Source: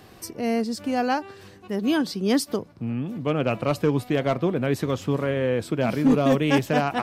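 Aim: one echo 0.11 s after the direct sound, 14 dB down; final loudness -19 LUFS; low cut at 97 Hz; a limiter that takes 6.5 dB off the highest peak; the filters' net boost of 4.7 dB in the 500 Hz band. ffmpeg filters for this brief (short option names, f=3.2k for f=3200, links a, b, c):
-af "highpass=97,equalizer=f=500:t=o:g=5.5,alimiter=limit=-12.5dB:level=0:latency=1,aecho=1:1:110:0.2,volume=4.5dB"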